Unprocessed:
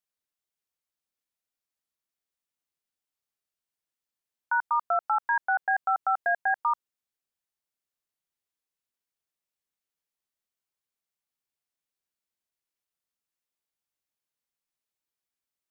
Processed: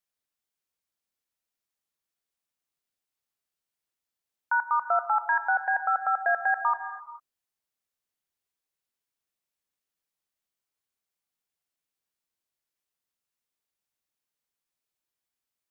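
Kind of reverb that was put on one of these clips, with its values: gated-style reverb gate 470 ms flat, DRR 10.5 dB; trim +1 dB

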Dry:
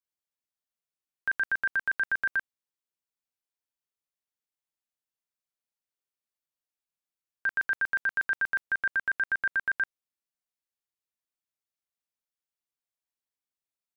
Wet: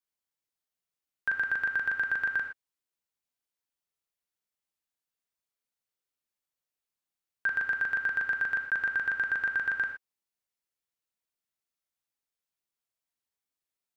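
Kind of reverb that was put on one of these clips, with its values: gated-style reverb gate 140 ms flat, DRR 4.5 dB

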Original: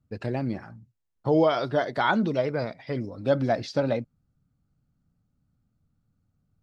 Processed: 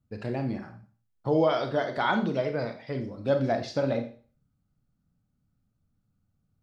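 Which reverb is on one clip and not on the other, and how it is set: Schroeder reverb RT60 0.41 s, combs from 30 ms, DRR 6 dB; trim -3 dB

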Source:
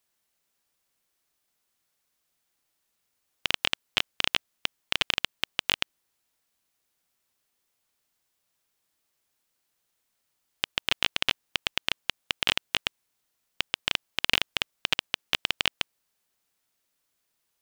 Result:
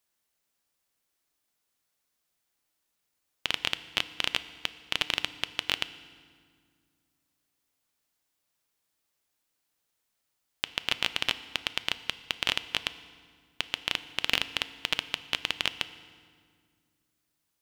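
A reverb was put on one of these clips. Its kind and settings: FDN reverb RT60 1.9 s, low-frequency decay 1.55×, high-frequency decay 0.8×, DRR 13 dB; trim -2.5 dB

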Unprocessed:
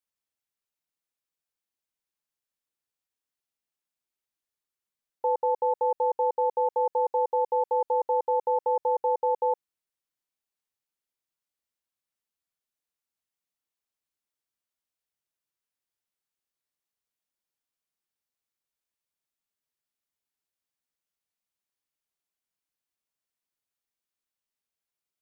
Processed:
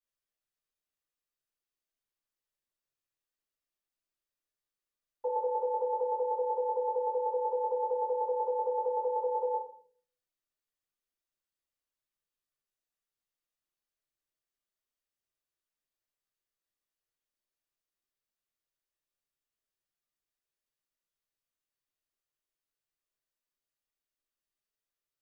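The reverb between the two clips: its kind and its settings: simulated room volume 48 m³, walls mixed, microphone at 2.6 m; trim -15.5 dB

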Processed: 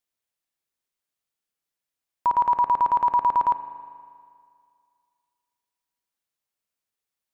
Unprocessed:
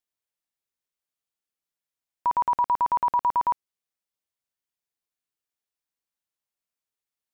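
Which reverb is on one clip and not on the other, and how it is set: spring tank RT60 2.2 s, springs 39 ms, chirp 25 ms, DRR 11 dB; trim +2.5 dB

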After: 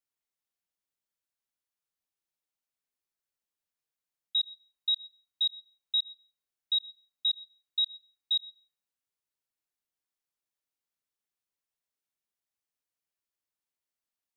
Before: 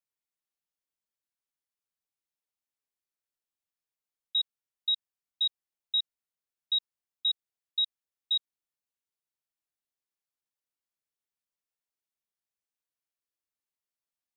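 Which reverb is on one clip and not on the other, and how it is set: algorithmic reverb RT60 0.56 s, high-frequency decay 0.65×, pre-delay 55 ms, DRR 18 dB

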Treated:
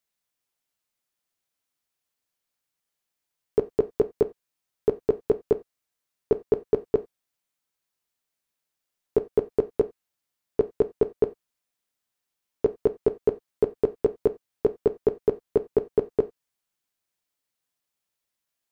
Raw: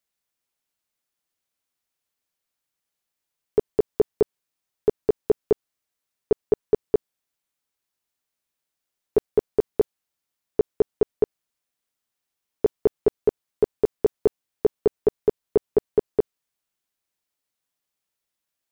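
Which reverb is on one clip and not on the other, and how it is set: gated-style reverb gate 110 ms falling, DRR 10 dB; trim -1 dB

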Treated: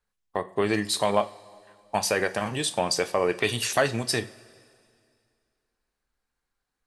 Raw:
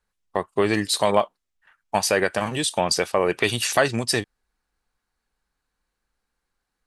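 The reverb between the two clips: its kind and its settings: two-slope reverb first 0.33 s, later 2.3 s, from -18 dB, DRR 9.5 dB; trim -4 dB

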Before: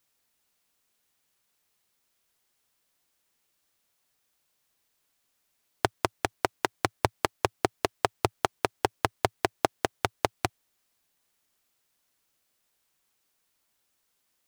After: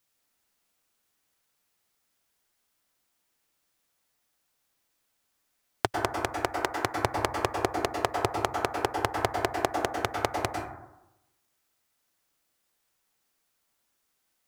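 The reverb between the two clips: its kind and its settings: plate-style reverb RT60 0.92 s, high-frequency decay 0.3×, pre-delay 90 ms, DRR 1.5 dB; trim -2 dB

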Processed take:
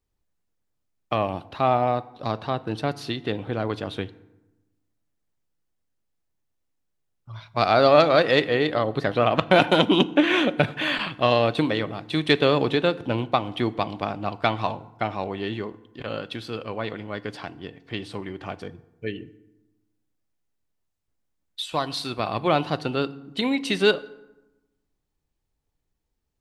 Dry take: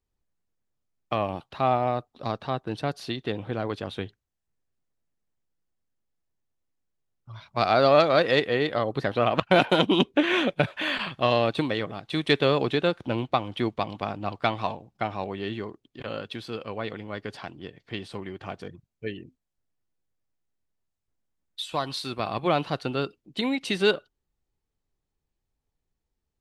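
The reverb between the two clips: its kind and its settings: FDN reverb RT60 1 s, low-frequency decay 1.35×, high-frequency decay 0.6×, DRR 15.5 dB; trim +2.5 dB

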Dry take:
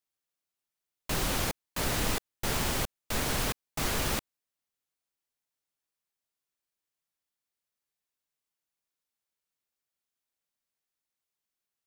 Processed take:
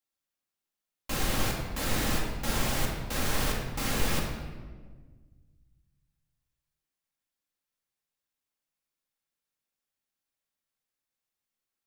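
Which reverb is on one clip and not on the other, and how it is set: simulated room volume 1300 m³, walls mixed, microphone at 2.2 m; trim -3.5 dB

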